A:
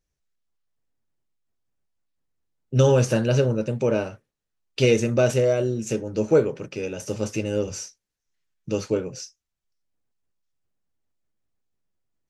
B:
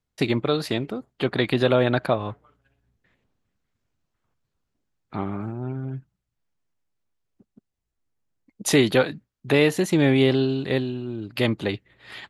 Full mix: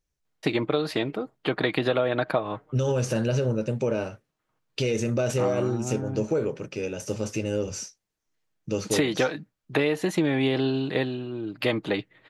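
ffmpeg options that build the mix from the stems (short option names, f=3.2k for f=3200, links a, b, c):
-filter_complex "[0:a]alimiter=limit=-14.5dB:level=0:latency=1:release=48,volume=-1dB[a];[1:a]highpass=f=270:p=1,highshelf=f=4.7k:g=-9,aecho=1:1:6.4:0.33,adelay=250,volume=2.5dB[b];[a][b]amix=inputs=2:normalize=0,acompressor=threshold=-19dB:ratio=10"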